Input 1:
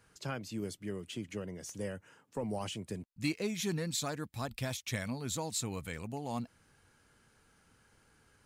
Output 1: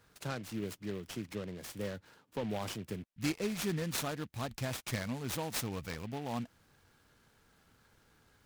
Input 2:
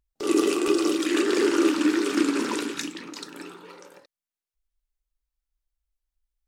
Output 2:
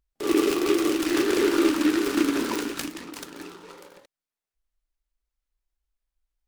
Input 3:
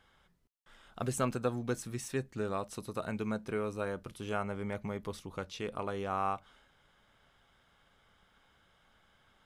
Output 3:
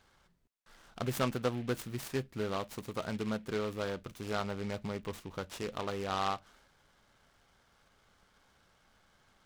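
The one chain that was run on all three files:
delay time shaken by noise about 2.2 kHz, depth 0.056 ms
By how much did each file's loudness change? 0.0 LU, 0.0 LU, 0.0 LU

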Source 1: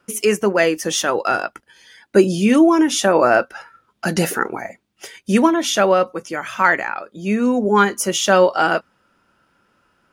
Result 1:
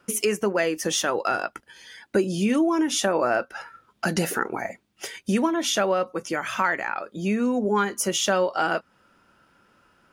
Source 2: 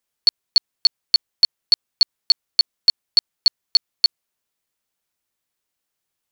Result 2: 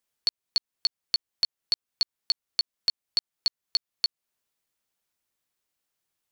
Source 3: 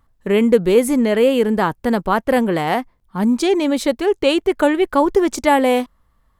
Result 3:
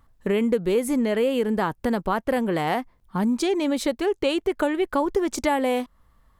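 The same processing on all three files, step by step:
compression 2.5:1, threshold -25 dBFS; peak normalisation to -9 dBFS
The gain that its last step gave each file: +1.0 dB, -2.0 dB, +1.5 dB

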